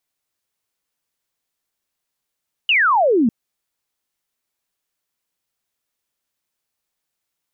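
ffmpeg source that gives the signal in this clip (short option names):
-f lavfi -i "aevalsrc='0.251*clip(t/0.002,0,1)*clip((0.6-t)/0.002,0,1)*sin(2*PI*3000*0.6/log(210/3000)*(exp(log(210/3000)*t/0.6)-1))':d=0.6:s=44100"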